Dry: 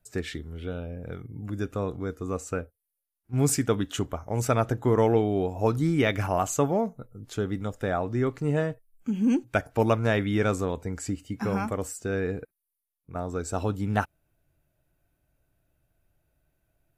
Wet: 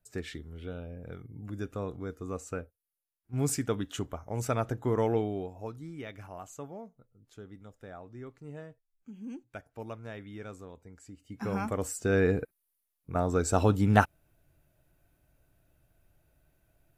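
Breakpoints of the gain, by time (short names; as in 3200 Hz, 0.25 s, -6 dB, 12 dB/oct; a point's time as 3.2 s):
5.23 s -6 dB
5.79 s -18.5 dB
11.12 s -18.5 dB
11.43 s -6 dB
12.22 s +4 dB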